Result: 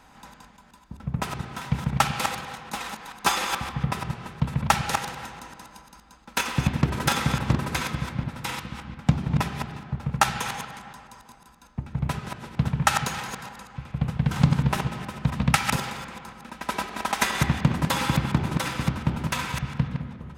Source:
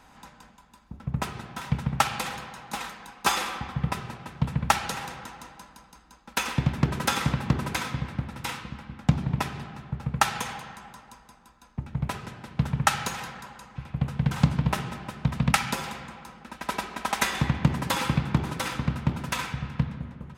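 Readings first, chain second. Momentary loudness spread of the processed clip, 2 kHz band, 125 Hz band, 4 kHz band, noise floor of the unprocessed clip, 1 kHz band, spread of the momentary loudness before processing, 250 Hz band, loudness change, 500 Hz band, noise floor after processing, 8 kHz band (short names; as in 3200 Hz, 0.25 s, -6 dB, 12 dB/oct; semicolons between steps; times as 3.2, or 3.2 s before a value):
15 LU, +2.0 dB, +2.0 dB, +2.0 dB, -55 dBFS, +2.0 dB, 15 LU, +2.0 dB, +2.0 dB, +2.0 dB, -53 dBFS, +2.0 dB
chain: reverse delay 0.142 s, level -5.5 dB; gain +1 dB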